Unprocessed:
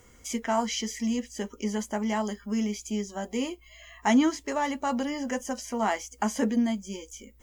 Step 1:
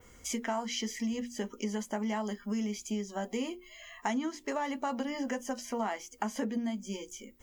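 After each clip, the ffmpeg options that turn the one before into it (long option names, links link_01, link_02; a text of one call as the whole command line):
ffmpeg -i in.wav -af "bandreject=frequency=60:width_type=h:width=6,bandreject=frequency=120:width_type=h:width=6,bandreject=frequency=180:width_type=h:width=6,bandreject=frequency=240:width_type=h:width=6,bandreject=frequency=300:width_type=h:width=6,bandreject=frequency=360:width_type=h:width=6,adynamicequalizer=threshold=0.00224:dfrequency=8100:dqfactor=0.85:tfrequency=8100:tqfactor=0.85:attack=5:release=100:ratio=0.375:range=3:mode=cutabove:tftype=bell,acompressor=threshold=-30dB:ratio=6" out.wav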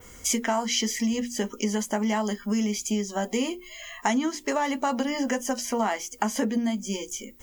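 ffmpeg -i in.wav -af "highshelf=frequency=4900:gain=6.5,volume=7.5dB" out.wav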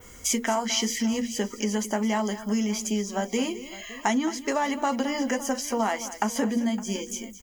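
ffmpeg -i in.wav -af "aecho=1:1:216|562:0.188|0.126" out.wav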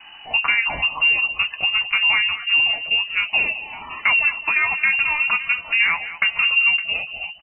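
ffmpeg -i in.wav -filter_complex "[0:a]asplit=2[link_01][link_02];[link_02]aeval=exprs='0.355*sin(PI/2*2*val(0)/0.355)':channel_layout=same,volume=-11dB[link_03];[link_01][link_03]amix=inputs=2:normalize=0,asplit=2[link_04][link_05];[link_05]adelay=13,volume=-11dB[link_06];[link_04][link_06]amix=inputs=2:normalize=0,lowpass=frequency=2600:width_type=q:width=0.5098,lowpass=frequency=2600:width_type=q:width=0.6013,lowpass=frequency=2600:width_type=q:width=0.9,lowpass=frequency=2600:width_type=q:width=2.563,afreqshift=-3000,volume=1.5dB" out.wav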